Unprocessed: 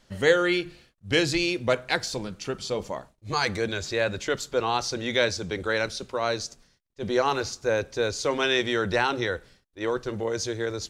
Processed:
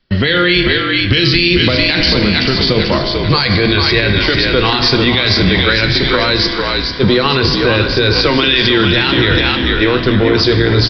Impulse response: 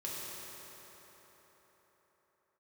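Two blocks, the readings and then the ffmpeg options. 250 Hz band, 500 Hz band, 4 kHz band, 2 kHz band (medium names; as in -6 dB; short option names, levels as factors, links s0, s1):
+17.5 dB, +11.0 dB, +19.5 dB, +15.0 dB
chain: -filter_complex "[0:a]agate=range=0.0562:threshold=0.00355:ratio=16:detection=peak,equalizer=f=720:w=1.2:g=-9.5,acrossover=split=180|2600[s0][s1][s2];[s1]acompressor=threshold=0.0224:ratio=6[s3];[s0][s3][s2]amix=inputs=3:normalize=0,flanger=delay=2.6:depth=9.6:regen=73:speed=0.25:shape=sinusoidal,asplit=6[s4][s5][s6][s7][s8][s9];[s5]adelay=443,afreqshift=-52,volume=0.501[s10];[s6]adelay=886,afreqshift=-104,volume=0.207[s11];[s7]adelay=1329,afreqshift=-156,volume=0.0841[s12];[s8]adelay=1772,afreqshift=-208,volume=0.0347[s13];[s9]adelay=2215,afreqshift=-260,volume=0.0141[s14];[s4][s10][s11][s12][s13][s14]amix=inputs=6:normalize=0,asplit=2[s15][s16];[1:a]atrim=start_sample=2205,asetrate=79380,aresample=44100[s17];[s16][s17]afir=irnorm=-1:irlink=0,volume=0.75[s18];[s15][s18]amix=inputs=2:normalize=0,aresample=11025,aresample=44100,alimiter=level_in=22.4:limit=0.891:release=50:level=0:latency=1,volume=0.891"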